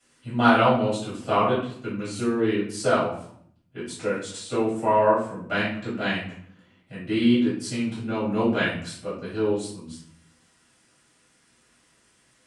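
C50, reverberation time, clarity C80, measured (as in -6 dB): 3.5 dB, 0.65 s, 7.5 dB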